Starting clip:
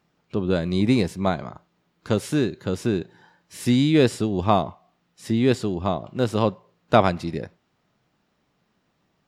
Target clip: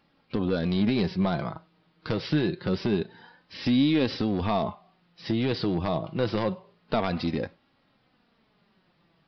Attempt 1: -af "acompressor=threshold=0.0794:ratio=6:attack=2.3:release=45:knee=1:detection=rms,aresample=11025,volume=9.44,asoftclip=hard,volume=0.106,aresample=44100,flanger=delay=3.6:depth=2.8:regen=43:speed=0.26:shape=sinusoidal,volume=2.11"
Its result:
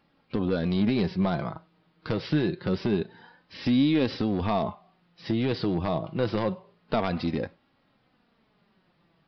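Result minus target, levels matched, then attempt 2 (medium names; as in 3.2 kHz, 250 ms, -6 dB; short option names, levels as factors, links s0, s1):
8 kHz band -3.0 dB
-af "acompressor=threshold=0.0794:ratio=6:attack=2.3:release=45:knee=1:detection=rms,highshelf=f=3800:g=5,aresample=11025,volume=9.44,asoftclip=hard,volume=0.106,aresample=44100,flanger=delay=3.6:depth=2.8:regen=43:speed=0.26:shape=sinusoidal,volume=2.11"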